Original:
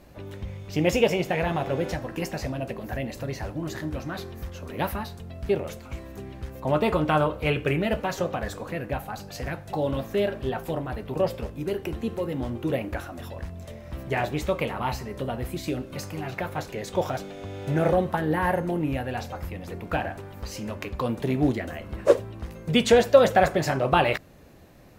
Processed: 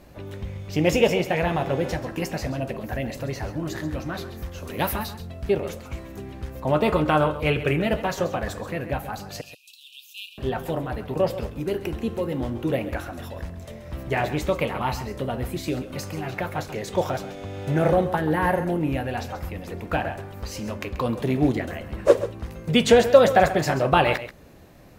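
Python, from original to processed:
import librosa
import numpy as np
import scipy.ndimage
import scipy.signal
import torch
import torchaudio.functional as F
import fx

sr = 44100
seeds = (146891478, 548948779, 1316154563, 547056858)

y = fx.high_shelf(x, sr, hz=3600.0, db=8.0, at=(4.58, 5.14))
y = fx.brickwall_highpass(y, sr, low_hz=2400.0, at=(9.41, 10.38))
y = y + 10.0 ** (-13.0 / 20.0) * np.pad(y, (int(134 * sr / 1000.0), 0))[:len(y)]
y = y * librosa.db_to_amplitude(2.0)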